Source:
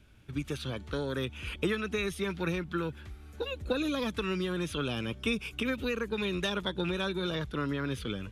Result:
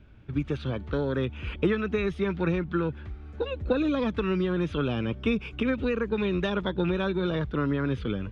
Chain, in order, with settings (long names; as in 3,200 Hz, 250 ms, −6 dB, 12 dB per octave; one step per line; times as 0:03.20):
head-to-tape spacing loss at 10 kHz 30 dB
level +7 dB